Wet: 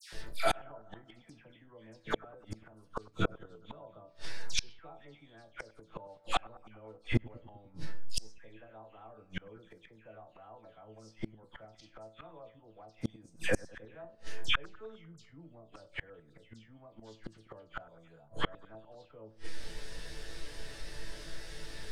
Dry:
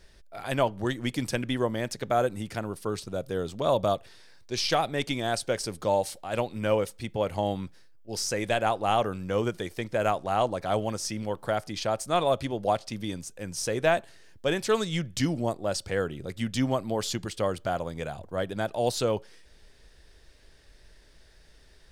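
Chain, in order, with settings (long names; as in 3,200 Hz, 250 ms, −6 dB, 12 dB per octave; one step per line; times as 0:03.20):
treble cut that deepens with the level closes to 2,000 Hz, closed at −22 dBFS
in parallel at +1 dB: brickwall limiter −19 dBFS, peak gain reduction 7 dB
on the sum: resonators tuned to a chord A2 sus4, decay 0.23 s
all-pass dispersion lows, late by 127 ms, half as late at 1,800 Hz
gate with flip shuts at −33 dBFS, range −38 dB
on a send: bucket-brigade delay 100 ms, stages 1,024, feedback 66%, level −21 dB
on the sum: level +18 dB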